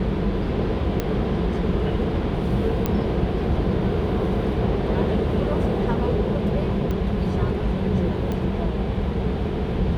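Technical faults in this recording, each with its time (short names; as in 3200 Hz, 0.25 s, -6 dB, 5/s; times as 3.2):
1 pop -10 dBFS
2.86 pop -9 dBFS
6.91 pop -16 dBFS
8.32 pop -16 dBFS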